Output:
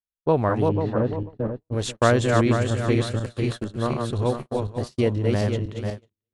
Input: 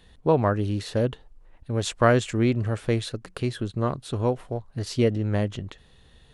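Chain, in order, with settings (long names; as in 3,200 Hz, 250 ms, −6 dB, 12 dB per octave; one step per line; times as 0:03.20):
feedback delay that plays each chunk backwards 246 ms, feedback 58%, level −3 dB
0:00.68–0:01.71: low-pass filter 1,800 Hz → 1,100 Hz 12 dB per octave
noise gate −28 dBFS, range −53 dB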